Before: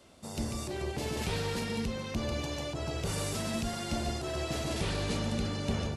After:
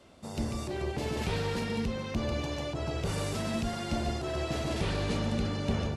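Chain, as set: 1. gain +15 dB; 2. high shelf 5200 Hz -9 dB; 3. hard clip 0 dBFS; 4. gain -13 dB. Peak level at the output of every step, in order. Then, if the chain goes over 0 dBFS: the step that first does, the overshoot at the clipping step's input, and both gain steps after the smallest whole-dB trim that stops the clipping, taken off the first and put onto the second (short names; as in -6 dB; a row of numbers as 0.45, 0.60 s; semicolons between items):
-5.5, -5.5, -5.5, -18.5 dBFS; no overload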